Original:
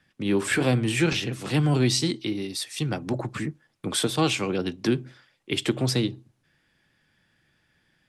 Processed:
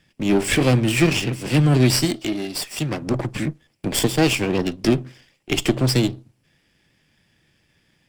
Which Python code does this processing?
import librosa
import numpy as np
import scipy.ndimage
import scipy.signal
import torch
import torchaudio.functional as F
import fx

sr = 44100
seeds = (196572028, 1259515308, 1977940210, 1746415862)

y = fx.lower_of_two(x, sr, delay_ms=0.38)
y = fx.low_shelf(y, sr, hz=120.0, db=-10.0, at=(2.05, 3.02))
y = y * librosa.db_to_amplitude(6.0)